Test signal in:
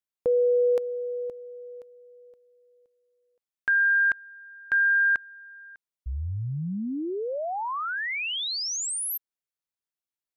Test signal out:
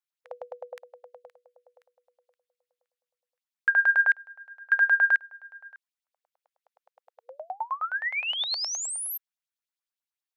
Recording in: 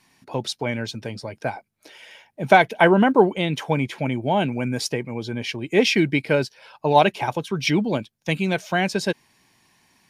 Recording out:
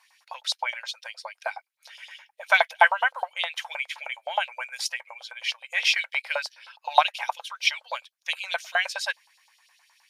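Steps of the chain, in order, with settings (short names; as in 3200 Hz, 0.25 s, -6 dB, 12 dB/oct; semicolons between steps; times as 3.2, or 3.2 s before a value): LFO high-pass saw up 9.6 Hz 760–4700 Hz; brick-wall FIR high-pass 490 Hz; gain -3 dB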